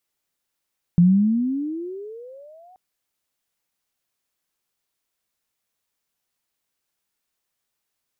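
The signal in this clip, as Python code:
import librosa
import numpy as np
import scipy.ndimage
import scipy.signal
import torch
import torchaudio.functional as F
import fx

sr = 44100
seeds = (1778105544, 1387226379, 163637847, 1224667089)

y = fx.riser_tone(sr, length_s=1.78, level_db=-9.5, wave='sine', hz=169.0, rise_st=26.0, swell_db=-37.5)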